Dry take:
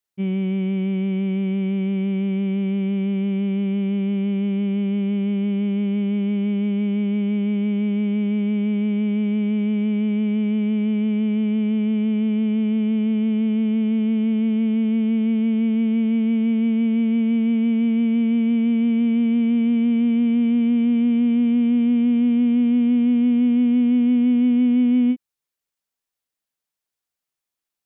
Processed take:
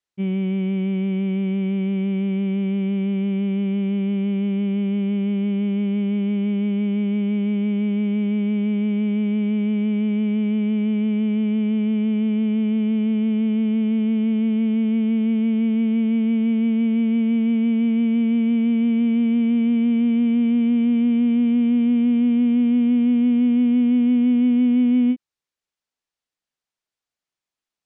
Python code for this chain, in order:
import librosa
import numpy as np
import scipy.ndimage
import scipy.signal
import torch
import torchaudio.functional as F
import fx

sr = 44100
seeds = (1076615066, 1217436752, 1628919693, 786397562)

y = scipy.signal.sosfilt(scipy.signal.butter(2, 6800.0, 'lowpass', fs=sr, output='sos'), x)